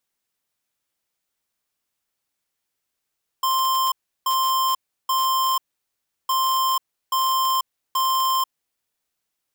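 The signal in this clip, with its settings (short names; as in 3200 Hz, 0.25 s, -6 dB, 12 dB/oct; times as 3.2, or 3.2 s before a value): beep pattern square 1050 Hz, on 0.49 s, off 0.34 s, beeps 3, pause 0.71 s, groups 2, -20.5 dBFS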